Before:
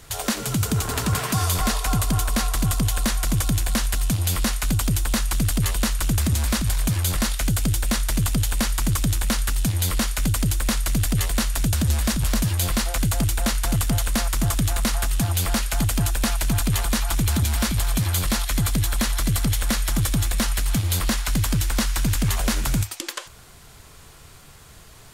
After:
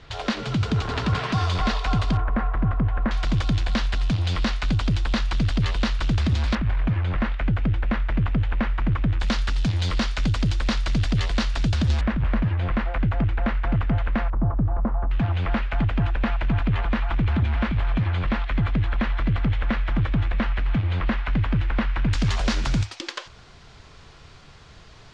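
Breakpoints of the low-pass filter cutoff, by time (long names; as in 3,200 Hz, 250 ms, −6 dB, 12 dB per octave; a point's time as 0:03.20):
low-pass filter 24 dB per octave
4,300 Hz
from 0:02.17 1,800 Hz
from 0:03.11 4,400 Hz
from 0:06.55 2,400 Hz
from 0:09.20 4,800 Hz
from 0:12.01 2,300 Hz
from 0:14.30 1,100 Hz
from 0:15.11 2,600 Hz
from 0:22.13 5,400 Hz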